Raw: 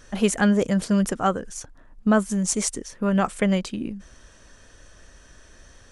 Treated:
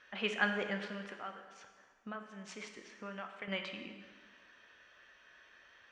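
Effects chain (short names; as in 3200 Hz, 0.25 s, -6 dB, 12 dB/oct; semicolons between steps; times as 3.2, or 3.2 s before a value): LPF 2700 Hz 24 dB/oct; differentiator; 0.82–3.48 compressor 3:1, threshold -54 dBFS, peak gain reduction 15 dB; plate-style reverb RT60 1.6 s, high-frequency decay 0.9×, DRR 4.5 dB; gain +7.5 dB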